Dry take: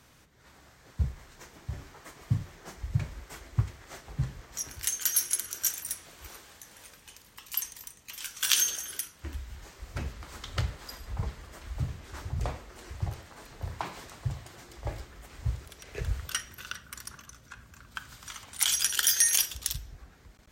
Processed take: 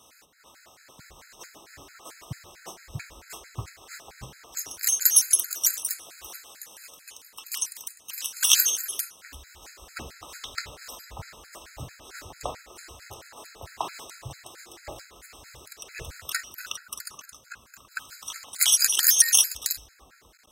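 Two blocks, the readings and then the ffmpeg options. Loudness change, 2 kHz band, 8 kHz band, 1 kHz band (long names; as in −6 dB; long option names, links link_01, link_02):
+8.5 dB, +3.0 dB, +6.5 dB, +3.0 dB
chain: -af "acontrast=42,bass=frequency=250:gain=-15,treble=frequency=4000:gain=5,afftfilt=real='re*gt(sin(2*PI*4.5*pts/sr)*(1-2*mod(floor(b*sr/1024/1300),2)),0)':imag='im*gt(sin(2*PI*4.5*pts/sr)*(1-2*mod(floor(b*sr/1024/1300),2)),0)':win_size=1024:overlap=0.75"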